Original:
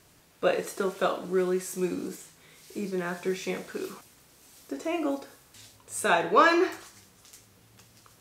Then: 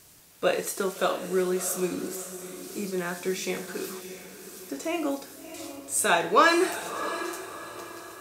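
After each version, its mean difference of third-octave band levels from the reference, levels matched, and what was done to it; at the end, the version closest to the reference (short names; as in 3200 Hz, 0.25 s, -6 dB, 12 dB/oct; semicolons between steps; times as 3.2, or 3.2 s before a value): 5.5 dB: high shelf 4600 Hz +10.5 dB; diffused feedback echo 0.673 s, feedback 41%, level -11.5 dB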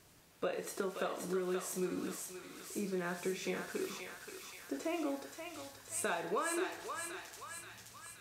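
7.5 dB: compressor 10:1, threshold -29 dBFS, peak gain reduction 15 dB; thinning echo 0.527 s, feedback 65%, high-pass 1100 Hz, level -3 dB; gain -4 dB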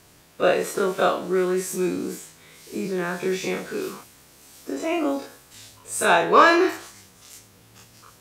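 1.5 dB: spectral dilation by 60 ms; in parallel at -11.5 dB: hard clip -15 dBFS, distortion -12 dB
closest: third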